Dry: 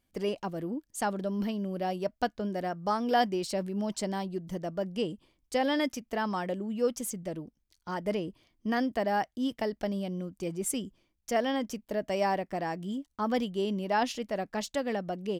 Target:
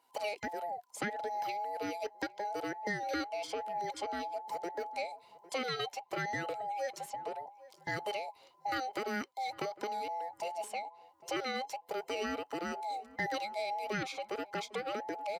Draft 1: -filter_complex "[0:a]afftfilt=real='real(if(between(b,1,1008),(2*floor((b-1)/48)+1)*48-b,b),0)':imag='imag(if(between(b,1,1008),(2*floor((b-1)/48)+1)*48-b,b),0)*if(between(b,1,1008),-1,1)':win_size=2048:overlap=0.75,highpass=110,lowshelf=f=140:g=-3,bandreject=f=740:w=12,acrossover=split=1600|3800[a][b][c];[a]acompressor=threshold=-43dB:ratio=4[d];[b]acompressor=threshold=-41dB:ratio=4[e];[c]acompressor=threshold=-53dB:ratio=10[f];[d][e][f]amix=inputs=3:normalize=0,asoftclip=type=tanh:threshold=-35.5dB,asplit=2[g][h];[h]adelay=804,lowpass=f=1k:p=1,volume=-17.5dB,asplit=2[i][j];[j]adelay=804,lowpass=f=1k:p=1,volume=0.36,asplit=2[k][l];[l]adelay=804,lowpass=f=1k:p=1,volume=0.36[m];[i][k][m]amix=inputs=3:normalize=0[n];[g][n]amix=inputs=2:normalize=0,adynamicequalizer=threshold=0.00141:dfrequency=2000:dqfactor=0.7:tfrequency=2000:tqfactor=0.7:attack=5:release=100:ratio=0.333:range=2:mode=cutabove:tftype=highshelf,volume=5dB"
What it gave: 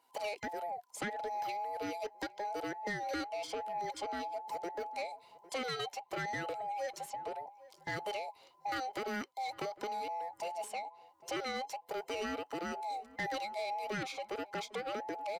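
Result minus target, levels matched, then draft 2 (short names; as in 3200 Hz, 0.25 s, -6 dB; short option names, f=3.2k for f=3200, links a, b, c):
soft clip: distortion +13 dB
-filter_complex "[0:a]afftfilt=real='real(if(between(b,1,1008),(2*floor((b-1)/48)+1)*48-b,b),0)':imag='imag(if(between(b,1,1008),(2*floor((b-1)/48)+1)*48-b,b),0)*if(between(b,1,1008),-1,1)':win_size=2048:overlap=0.75,highpass=110,lowshelf=f=140:g=-3,bandreject=f=740:w=12,acrossover=split=1600|3800[a][b][c];[a]acompressor=threshold=-43dB:ratio=4[d];[b]acompressor=threshold=-41dB:ratio=4[e];[c]acompressor=threshold=-53dB:ratio=10[f];[d][e][f]amix=inputs=3:normalize=0,asoftclip=type=tanh:threshold=-27dB,asplit=2[g][h];[h]adelay=804,lowpass=f=1k:p=1,volume=-17.5dB,asplit=2[i][j];[j]adelay=804,lowpass=f=1k:p=1,volume=0.36,asplit=2[k][l];[l]adelay=804,lowpass=f=1k:p=1,volume=0.36[m];[i][k][m]amix=inputs=3:normalize=0[n];[g][n]amix=inputs=2:normalize=0,adynamicequalizer=threshold=0.00141:dfrequency=2000:dqfactor=0.7:tfrequency=2000:tqfactor=0.7:attack=5:release=100:ratio=0.333:range=2:mode=cutabove:tftype=highshelf,volume=5dB"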